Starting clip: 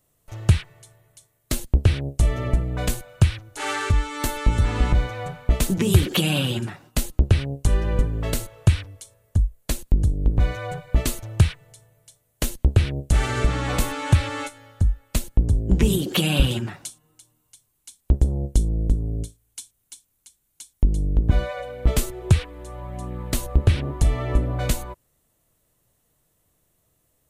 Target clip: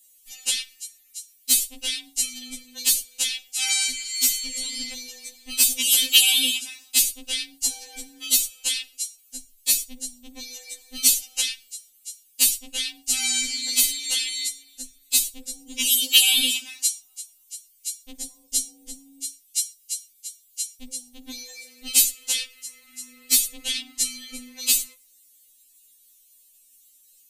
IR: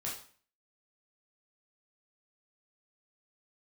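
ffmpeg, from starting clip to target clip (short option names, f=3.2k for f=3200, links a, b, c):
-filter_complex "[0:a]aexciter=amount=12.8:drive=7:freq=2.2k,asplit=2[a][b];[1:a]atrim=start_sample=2205,afade=t=out:st=0.15:d=0.01,atrim=end_sample=7056,adelay=43[c];[b][c]afir=irnorm=-1:irlink=0,volume=-22.5dB[d];[a][d]amix=inputs=2:normalize=0,afftfilt=real='re*3.46*eq(mod(b,12),0)':imag='im*3.46*eq(mod(b,12),0)':win_size=2048:overlap=0.75,volume=-11dB"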